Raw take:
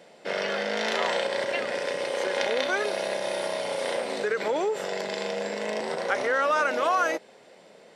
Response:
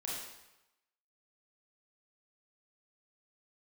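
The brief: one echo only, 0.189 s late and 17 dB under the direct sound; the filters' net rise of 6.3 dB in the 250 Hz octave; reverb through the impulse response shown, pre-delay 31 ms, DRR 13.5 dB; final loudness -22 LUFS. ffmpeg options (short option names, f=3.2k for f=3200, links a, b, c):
-filter_complex "[0:a]equalizer=f=250:t=o:g=8.5,aecho=1:1:189:0.141,asplit=2[a][b];[1:a]atrim=start_sample=2205,adelay=31[c];[b][c]afir=irnorm=-1:irlink=0,volume=-14.5dB[d];[a][d]amix=inputs=2:normalize=0,volume=4dB"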